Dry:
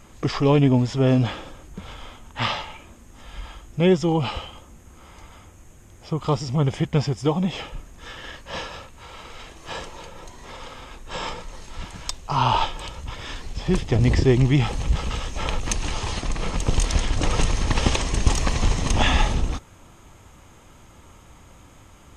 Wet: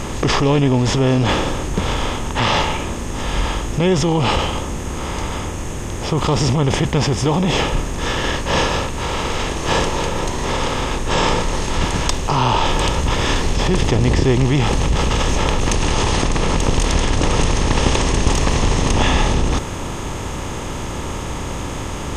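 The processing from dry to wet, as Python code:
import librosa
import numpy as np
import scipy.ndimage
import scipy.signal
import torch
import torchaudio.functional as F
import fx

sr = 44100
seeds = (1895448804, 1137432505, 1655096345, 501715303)

p1 = fx.bin_compress(x, sr, power=0.6)
p2 = fx.over_compress(p1, sr, threshold_db=-22.0, ratio=-0.5)
p3 = p1 + (p2 * 10.0 ** (-1.0 / 20.0))
y = p3 * 10.0 ** (-1.0 / 20.0)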